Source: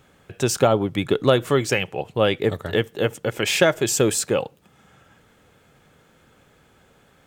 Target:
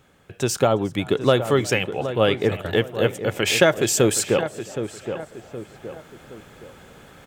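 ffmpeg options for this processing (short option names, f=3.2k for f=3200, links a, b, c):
-filter_complex "[0:a]asplit=2[a][b];[b]adelay=769,lowpass=f=1.9k:p=1,volume=-11dB,asplit=2[c][d];[d]adelay=769,lowpass=f=1.9k:p=1,volume=0.3,asplit=2[e][f];[f]adelay=769,lowpass=f=1.9k:p=1,volume=0.3[g];[c][e][g]amix=inputs=3:normalize=0[h];[a][h]amix=inputs=2:normalize=0,dynaudnorm=f=220:g=11:m=11dB,asplit=2[i][j];[j]asplit=4[k][l][m][n];[k]adelay=360,afreqshift=75,volume=-23.5dB[o];[l]adelay=720,afreqshift=150,volume=-28.7dB[p];[m]adelay=1080,afreqshift=225,volume=-33.9dB[q];[n]adelay=1440,afreqshift=300,volume=-39.1dB[r];[o][p][q][r]amix=inputs=4:normalize=0[s];[i][s]amix=inputs=2:normalize=0,volume=-1.5dB"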